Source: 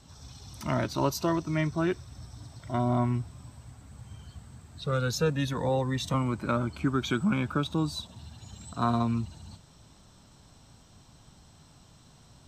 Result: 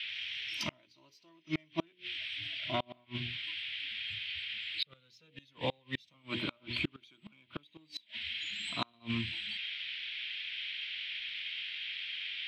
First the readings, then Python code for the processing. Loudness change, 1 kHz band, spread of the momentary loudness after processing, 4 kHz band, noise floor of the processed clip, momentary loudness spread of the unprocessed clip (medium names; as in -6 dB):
-8.0 dB, -12.5 dB, 10 LU, +6.0 dB, -68 dBFS, 20 LU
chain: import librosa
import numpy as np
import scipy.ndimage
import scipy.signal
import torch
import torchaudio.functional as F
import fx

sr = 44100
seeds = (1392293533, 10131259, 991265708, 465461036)

p1 = fx.hum_notches(x, sr, base_hz=60, count=9)
p2 = fx.noise_reduce_blind(p1, sr, reduce_db=17)
p3 = fx.low_shelf(p2, sr, hz=69.0, db=-5.5)
p4 = fx.dmg_noise_band(p3, sr, seeds[0], low_hz=1500.0, high_hz=3500.0, level_db=-51.0)
p5 = fx.small_body(p4, sr, hz=(320.0, 620.0, 1000.0, 3200.0), ring_ms=65, db=8)
p6 = fx.dmg_crackle(p5, sr, seeds[1], per_s=20.0, level_db=-58.0)
p7 = fx.band_shelf(p6, sr, hz=3400.0, db=16.0, octaves=1.7)
p8 = 10.0 ** (-19.0 / 20.0) * np.tanh(p7 / 10.0 ** (-19.0 / 20.0))
p9 = p7 + F.gain(torch.from_numpy(p8), -7.5).numpy()
p10 = fx.gate_flip(p9, sr, shuts_db=-13.0, range_db=-35)
y = F.gain(torch.from_numpy(p10), -7.5).numpy()